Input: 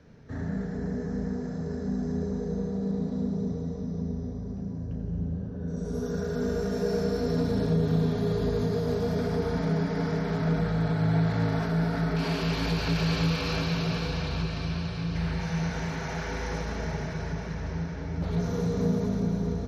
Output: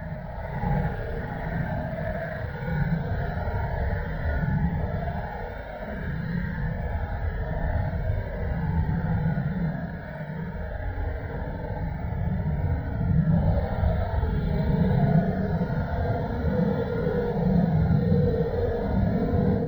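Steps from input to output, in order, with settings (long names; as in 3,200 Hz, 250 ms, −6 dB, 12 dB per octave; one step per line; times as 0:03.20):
reverb reduction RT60 0.55 s
high-frequency loss of the air 460 metres
extreme stretch with random phases 10×, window 0.05 s, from 0:16.88
bad sample-rate conversion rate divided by 2×, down filtered, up hold
mains-hum notches 60/120/180 Hz
in parallel at −7 dB: dead-zone distortion −47 dBFS
on the sum: low-shelf EQ 170 Hz −3.5 dB
on a send: feedback echo with a band-pass in the loop 680 ms, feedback 42%, band-pass 1,100 Hz, level −23.5 dB
on the sum: automatic gain control gain up to 9 dB
phaser with its sweep stopped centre 1,700 Hz, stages 8
Opus 24 kbit/s 48,000 Hz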